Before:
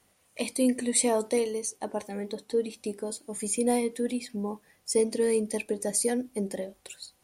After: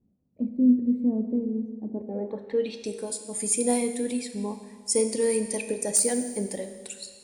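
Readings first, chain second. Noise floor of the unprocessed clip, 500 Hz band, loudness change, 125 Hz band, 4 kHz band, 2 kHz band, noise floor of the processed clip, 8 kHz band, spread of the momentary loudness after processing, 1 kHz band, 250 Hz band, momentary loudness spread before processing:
-67 dBFS, -0.5 dB, +2.5 dB, no reading, -0.5 dB, -1.5 dB, -64 dBFS, +3.5 dB, 13 LU, -3.0 dB, +5.0 dB, 11 LU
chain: low-pass sweep 230 Hz -> 8.6 kHz, 1.88–2.94 s; wavefolder -12 dBFS; Schroeder reverb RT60 1.6 s, combs from 25 ms, DRR 8 dB

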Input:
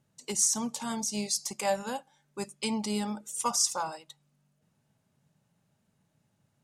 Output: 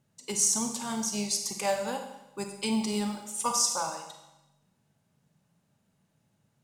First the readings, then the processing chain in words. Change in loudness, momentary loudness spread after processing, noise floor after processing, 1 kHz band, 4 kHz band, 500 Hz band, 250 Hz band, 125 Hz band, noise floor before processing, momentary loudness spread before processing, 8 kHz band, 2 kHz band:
+1.5 dB, 15 LU, -74 dBFS, +1.0 dB, +1.0 dB, +1.5 dB, +2.0 dB, +1.5 dB, -75 dBFS, 14 LU, +1.5 dB, +1.5 dB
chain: short-mantissa float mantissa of 4-bit; Schroeder reverb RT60 0.94 s, combs from 32 ms, DRR 5 dB

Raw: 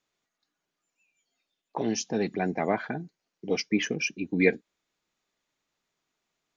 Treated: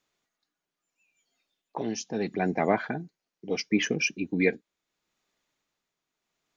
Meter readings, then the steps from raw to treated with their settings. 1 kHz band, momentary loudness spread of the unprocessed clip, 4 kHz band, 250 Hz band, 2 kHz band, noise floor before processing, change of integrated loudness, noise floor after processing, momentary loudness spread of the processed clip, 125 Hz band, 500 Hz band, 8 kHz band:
+1.5 dB, 15 LU, +0.5 dB, 0.0 dB, +0.5 dB, -85 dBFS, 0.0 dB, under -85 dBFS, 16 LU, 0.0 dB, -0.5 dB, no reading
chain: tremolo 0.75 Hz, depth 53%; trim +2.5 dB

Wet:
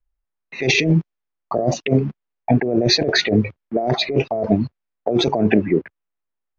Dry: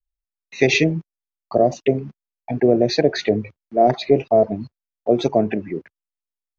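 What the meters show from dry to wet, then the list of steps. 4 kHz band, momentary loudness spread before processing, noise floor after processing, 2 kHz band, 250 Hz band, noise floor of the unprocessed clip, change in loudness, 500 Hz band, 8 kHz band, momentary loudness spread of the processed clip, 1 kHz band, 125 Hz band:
+7.5 dB, 14 LU, -80 dBFS, +3.0 dB, +2.5 dB, under -85 dBFS, 0.0 dB, -3.0 dB, no reading, 10 LU, -3.0 dB, +5.5 dB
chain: level-controlled noise filter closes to 1.7 kHz, open at -10.5 dBFS; compressor with a negative ratio -22 dBFS, ratio -1; trim +5 dB

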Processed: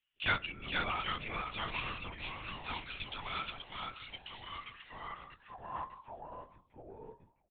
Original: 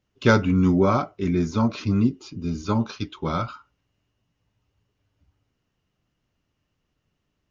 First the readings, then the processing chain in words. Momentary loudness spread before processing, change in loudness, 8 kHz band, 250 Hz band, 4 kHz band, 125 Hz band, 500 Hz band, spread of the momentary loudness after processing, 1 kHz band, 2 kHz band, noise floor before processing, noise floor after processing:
12 LU, -16.5 dB, no reading, -28.0 dB, -0.5 dB, -23.0 dB, -21.5 dB, 17 LU, -9.0 dB, -4.5 dB, -77 dBFS, -75 dBFS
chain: bass shelf 190 Hz -8.5 dB; delay 472 ms -3.5 dB; ever faster or slower copies 761 ms, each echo -2 st, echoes 3, each echo -6 dB; band-pass sweep 2.8 kHz -> 370 Hz, 4.46–7.22 s; LPC vocoder at 8 kHz whisper; trim +1.5 dB

